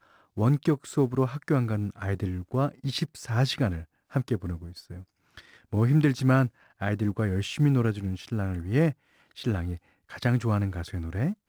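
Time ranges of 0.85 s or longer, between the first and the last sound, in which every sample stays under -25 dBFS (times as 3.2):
4.55–5.73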